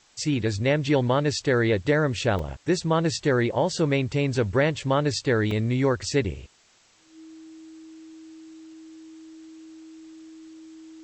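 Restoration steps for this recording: notch 320 Hz, Q 30; interpolate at 2.39/5.51, 3.1 ms; expander -38 dBFS, range -21 dB

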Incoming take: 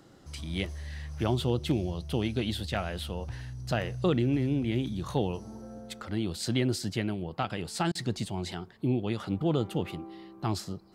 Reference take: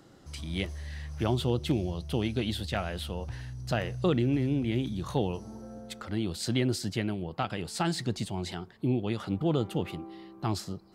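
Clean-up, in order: interpolate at 7.92, 30 ms

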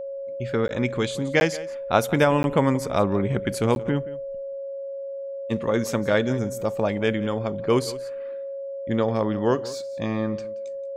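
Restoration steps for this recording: notch 550 Hz, Q 30; interpolate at 0.68/1.4/2.43/3.75, 11 ms; inverse comb 0.177 s -18 dB

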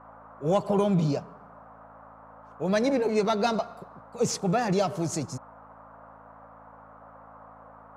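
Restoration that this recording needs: de-hum 54.7 Hz, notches 5; noise print and reduce 22 dB

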